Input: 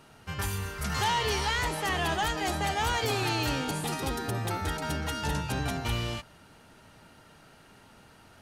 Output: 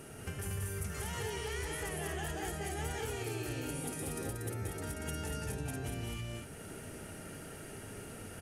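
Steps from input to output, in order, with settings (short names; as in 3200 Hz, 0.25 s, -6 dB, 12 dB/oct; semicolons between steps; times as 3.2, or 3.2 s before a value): fifteen-band EQ 100 Hz +4 dB, 400 Hz +6 dB, 1000 Hz -10 dB, 4000 Hz -10 dB, 10000 Hz +10 dB; compressor 12:1, threshold -44 dBFS, peak gain reduction 20.5 dB; on a send: loudspeakers at several distances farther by 63 m -3 dB, 81 m -3 dB; on the sum: gain +5 dB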